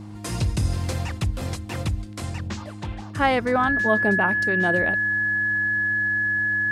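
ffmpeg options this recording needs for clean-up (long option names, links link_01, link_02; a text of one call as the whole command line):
ffmpeg -i in.wav -af "bandreject=frequency=104.1:width_type=h:width=4,bandreject=frequency=208.2:width_type=h:width=4,bandreject=frequency=312.3:width_type=h:width=4,bandreject=frequency=1700:width=30" out.wav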